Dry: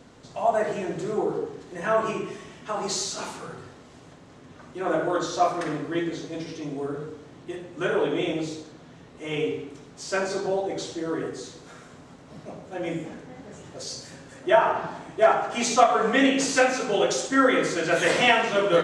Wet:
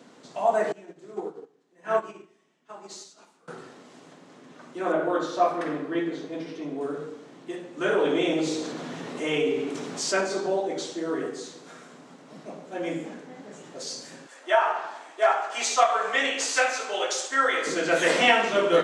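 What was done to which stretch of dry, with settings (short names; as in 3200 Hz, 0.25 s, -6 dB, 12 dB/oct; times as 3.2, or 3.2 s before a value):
0.72–3.48 upward expander 2.5:1, over -35 dBFS
4.92–6.81 bell 7100 Hz -10 dB 1.6 oct
7.87–10.21 fast leveller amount 50%
14.26–17.67 HPF 690 Hz
whole clip: HPF 180 Hz 24 dB/oct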